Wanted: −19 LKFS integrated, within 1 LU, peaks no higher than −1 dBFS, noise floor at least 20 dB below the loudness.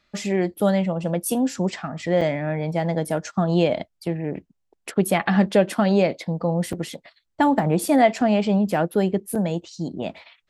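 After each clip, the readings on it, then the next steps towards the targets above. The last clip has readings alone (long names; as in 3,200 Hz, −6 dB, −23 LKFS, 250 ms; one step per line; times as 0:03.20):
number of dropouts 3; longest dropout 4.8 ms; integrated loudness −22.5 LKFS; sample peak −6.0 dBFS; target loudness −19.0 LKFS
→ repair the gap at 0:02.21/0:06.73/0:09.35, 4.8 ms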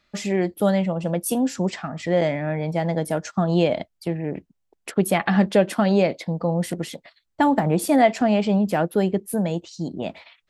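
number of dropouts 0; integrated loudness −22.5 LKFS; sample peak −6.0 dBFS; target loudness −19.0 LKFS
→ level +3.5 dB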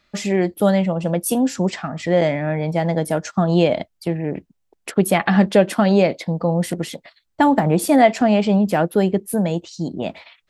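integrated loudness −19.0 LKFS; sample peak −2.5 dBFS; background noise floor −70 dBFS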